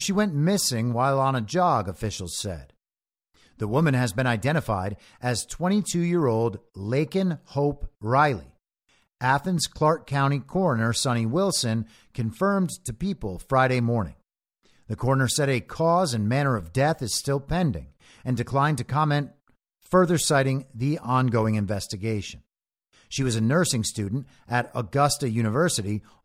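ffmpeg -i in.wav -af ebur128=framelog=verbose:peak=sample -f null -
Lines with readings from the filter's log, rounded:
Integrated loudness:
  I:         -24.6 LUFS
  Threshold: -35.1 LUFS
Loudness range:
  LRA:         2.5 LU
  Threshold: -45.4 LUFS
  LRA low:   -26.8 LUFS
  LRA high:  -24.3 LUFS
Sample peak:
  Peak:       -5.9 dBFS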